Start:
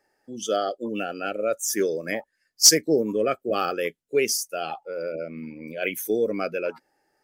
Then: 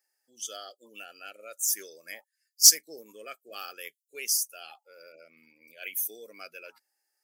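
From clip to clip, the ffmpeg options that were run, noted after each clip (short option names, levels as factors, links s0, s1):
-af "aderivative"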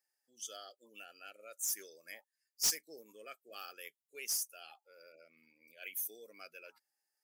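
-af "asoftclip=type=tanh:threshold=0.119,volume=0.422"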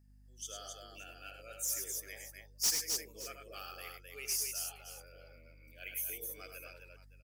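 -filter_complex "[0:a]aeval=exprs='val(0)+0.000708*(sin(2*PI*50*n/s)+sin(2*PI*2*50*n/s)/2+sin(2*PI*3*50*n/s)/3+sin(2*PI*4*50*n/s)/4+sin(2*PI*5*50*n/s)/5)':c=same,asplit=2[s0][s1];[s1]aecho=0:1:80|103|262|569:0.335|0.473|0.596|0.158[s2];[s0][s2]amix=inputs=2:normalize=0"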